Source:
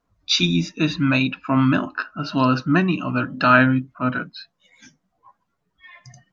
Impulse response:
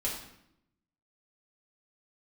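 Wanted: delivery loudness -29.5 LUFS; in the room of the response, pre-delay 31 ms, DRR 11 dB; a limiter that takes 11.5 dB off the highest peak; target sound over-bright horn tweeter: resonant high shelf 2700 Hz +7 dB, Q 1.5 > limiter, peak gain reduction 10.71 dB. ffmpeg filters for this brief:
-filter_complex "[0:a]alimiter=limit=-13dB:level=0:latency=1,asplit=2[a][b];[1:a]atrim=start_sample=2205,adelay=31[c];[b][c]afir=irnorm=-1:irlink=0,volume=-15.5dB[d];[a][d]amix=inputs=2:normalize=0,highshelf=f=2.7k:t=q:w=1.5:g=7,volume=-4.5dB,alimiter=limit=-19.5dB:level=0:latency=1"

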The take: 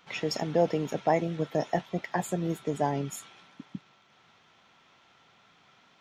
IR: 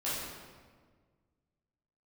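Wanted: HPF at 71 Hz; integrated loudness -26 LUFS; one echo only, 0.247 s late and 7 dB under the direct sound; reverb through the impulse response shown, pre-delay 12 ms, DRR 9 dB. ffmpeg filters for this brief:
-filter_complex "[0:a]highpass=71,aecho=1:1:247:0.447,asplit=2[a][b];[1:a]atrim=start_sample=2205,adelay=12[c];[b][c]afir=irnorm=-1:irlink=0,volume=-15dB[d];[a][d]amix=inputs=2:normalize=0,volume=2.5dB"

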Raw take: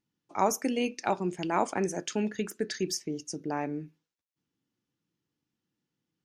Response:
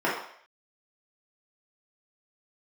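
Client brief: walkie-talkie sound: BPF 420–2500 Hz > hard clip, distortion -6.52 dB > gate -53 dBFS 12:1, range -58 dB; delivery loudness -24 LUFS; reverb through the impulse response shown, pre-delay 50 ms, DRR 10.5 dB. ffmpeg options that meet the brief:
-filter_complex "[0:a]asplit=2[a][b];[1:a]atrim=start_sample=2205,adelay=50[c];[b][c]afir=irnorm=-1:irlink=0,volume=-25.5dB[d];[a][d]amix=inputs=2:normalize=0,highpass=420,lowpass=2.5k,asoftclip=type=hard:threshold=-28.5dB,agate=range=-58dB:threshold=-53dB:ratio=12,volume=13dB"

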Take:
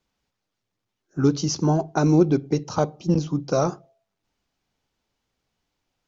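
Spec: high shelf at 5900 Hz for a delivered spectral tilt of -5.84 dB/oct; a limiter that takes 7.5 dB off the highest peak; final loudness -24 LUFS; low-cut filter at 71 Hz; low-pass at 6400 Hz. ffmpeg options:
-af "highpass=71,lowpass=6.4k,highshelf=f=5.9k:g=8,volume=1dB,alimiter=limit=-12.5dB:level=0:latency=1"

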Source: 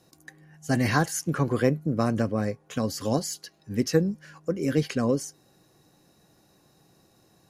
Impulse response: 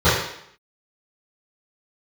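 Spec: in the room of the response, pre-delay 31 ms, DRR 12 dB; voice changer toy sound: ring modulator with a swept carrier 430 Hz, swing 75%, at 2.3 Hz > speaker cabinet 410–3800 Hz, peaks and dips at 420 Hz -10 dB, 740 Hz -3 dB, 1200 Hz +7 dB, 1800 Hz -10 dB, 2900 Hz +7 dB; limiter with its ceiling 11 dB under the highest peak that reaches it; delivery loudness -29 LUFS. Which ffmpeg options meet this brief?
-filter_complex "[0:a]alimiter=limit=-18dB:level=0:latency=1,asplit=2[a][b];[1:a]atrim=start_sample=2205,adelay=31[c];[b][c]afir=irnorm=-1:irlink=0,volume=-36dB[d];[a][d]amix=inputs=2:normalize=0,aeval=exprs='val(0)*sin(2*PI*430*n/s+430*0.75/2.3*sin(2*PI*2.3*n/s))':c=same,highpass=410,equalizer=f=420:t=q:w=4:g=-10,equalizer=f=740:t=q:w=4:g=-3,equalizer=f=1.2k:t=q:w=4:g=7,equalizer=f=1.8k:t=q:w=4:g=-10,equalizer=f=2.9k:t=q:w=4:g=7,lowpass=f=3.8k:w=0.5412,lowpass=f=3.8k:w=1.3066,volume=6.5dB"

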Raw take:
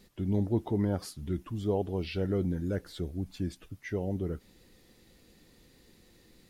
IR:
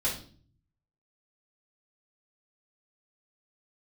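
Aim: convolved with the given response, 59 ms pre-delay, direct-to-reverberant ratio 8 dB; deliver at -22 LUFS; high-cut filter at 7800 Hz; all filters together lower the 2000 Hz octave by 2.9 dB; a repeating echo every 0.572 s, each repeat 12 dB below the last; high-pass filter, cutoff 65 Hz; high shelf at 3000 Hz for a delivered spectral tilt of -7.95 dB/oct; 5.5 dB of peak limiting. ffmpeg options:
-filter_complex "[0:a]highpass=65,lowpass=7.8k,equalizer=f=2k:t=o:g=-5,highshelf=f=3k:g=3.5,alimiter=limit=-22.5dB:level=0:latency=1,aecho=1:1:572|1144|1716:0.251|0.0628|0.0157,asplit=2[a][b];[1:a]atrim=start_sample=2205,adelay=59[c];[b][c]afir=irnorm=-1:irlink=0,volume=-15dB[d];[a][d]amix=inputs=2:normalize=0,volume=12dB"

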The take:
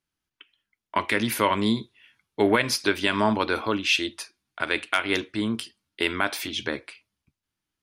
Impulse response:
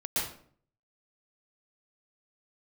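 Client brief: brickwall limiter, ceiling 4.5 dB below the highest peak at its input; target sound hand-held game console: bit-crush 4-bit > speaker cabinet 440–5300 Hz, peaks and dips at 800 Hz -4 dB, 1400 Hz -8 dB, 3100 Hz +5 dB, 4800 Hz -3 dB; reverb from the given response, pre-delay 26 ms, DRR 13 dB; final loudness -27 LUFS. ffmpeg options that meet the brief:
-filter_complex "[0:a]alimiter=limit=-11dB:level=0:latency=1,asplit=2[a][b];[1:a]atrim=start_sample=2205,adelay=26[c];[b][c]afir=irnorm=-1:irlink=0,volume=-20dB[d];[a][d]amix=inputs=2:normalize=0,acrusher=bits=3:mix=0:aa=0.000001,highpass=440,equalizer=f=800:t=q:w=4:g=-4,equalizer=f=1.4k:t=q:w=4:g=-8,equalizer=f=3.1k:t=q:w=4:g=5,equalizer=f=4.8k:t=q:w=4:g=-3,lowpass=f=5.3k:w=0.5412,lowpass=f=5.3k:w=1.3066"

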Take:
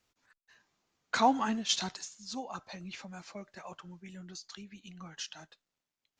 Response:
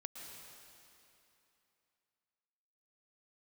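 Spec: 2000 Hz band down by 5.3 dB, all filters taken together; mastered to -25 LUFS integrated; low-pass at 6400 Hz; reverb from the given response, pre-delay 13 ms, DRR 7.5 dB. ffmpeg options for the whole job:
-filter_complex "[0:a]lowpass=6.4k,equalizer=f=2k:t=o:g=-8,asplit=2[a][b];[1:a]atrim=start_sample=2205,adelay=13[c];[b][c]afir=irnorm=-1:irlink=0,volume=-4.5dB[d];[a][d]amix=inputs=2:normalize=0,volume=10dB"

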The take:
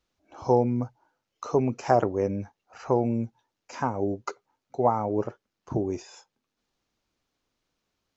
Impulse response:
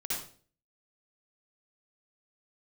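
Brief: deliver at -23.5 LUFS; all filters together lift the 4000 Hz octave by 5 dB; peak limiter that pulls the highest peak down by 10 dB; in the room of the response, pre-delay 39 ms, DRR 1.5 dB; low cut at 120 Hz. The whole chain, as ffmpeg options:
-filter_complex "[0:a]highpass=120,equalizer=f=4k:t=o:g=7,alimiter=limit=-17.5dB:level=0:latency=1,asplit=2[a][b];[1:a]atrim=start_sample=2205,adelay=39[c];[b][c]afir=irnorm=-1:irlink=0,volume=-5.5dB[d];[a][d]amix=inputs=2:normalize=0,volume=5.5dB"

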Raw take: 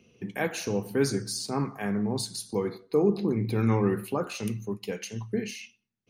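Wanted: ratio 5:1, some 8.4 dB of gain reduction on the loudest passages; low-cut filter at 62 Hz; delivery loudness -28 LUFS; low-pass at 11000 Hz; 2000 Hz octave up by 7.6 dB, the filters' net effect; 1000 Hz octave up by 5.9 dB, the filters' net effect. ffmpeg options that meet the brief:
-af "highpass=62,lowpass=11k,equalizer=f=1k:t=o:g=5.5,equalizer=f=2k:t=o:g=8,acompressor=threshold=-27dB:ratio=5,volume=4.5dB"

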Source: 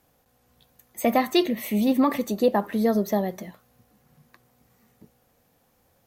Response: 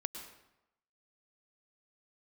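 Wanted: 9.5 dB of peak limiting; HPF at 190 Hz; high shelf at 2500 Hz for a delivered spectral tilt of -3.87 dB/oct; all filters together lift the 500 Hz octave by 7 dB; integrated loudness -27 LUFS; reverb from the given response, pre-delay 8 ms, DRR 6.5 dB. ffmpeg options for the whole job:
-filter_complex "[0:a]highpass=190,equalizer=f=500:t=o:g=8.5,highshelf=f=2.5k:g=-3.5,alimiter=limit=-12.5dB:level=0:latency=1,asplit=2[a][b];[1:a]atrim=start_sample=2205,adelay=8[c];[b][c]afir=irnorm=-1:irlink=0,volume=-6dB[d];[a][d]amix=inputs=2:normalize=0,volume=-5dB"

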